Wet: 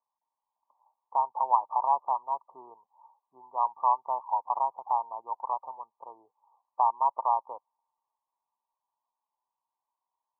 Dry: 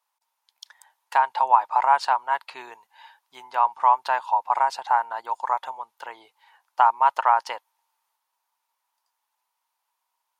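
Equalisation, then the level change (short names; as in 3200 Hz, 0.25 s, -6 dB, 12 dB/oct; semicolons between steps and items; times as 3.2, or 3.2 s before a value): brick-wall FIR low-pass 1200 Hz; -6.5 dB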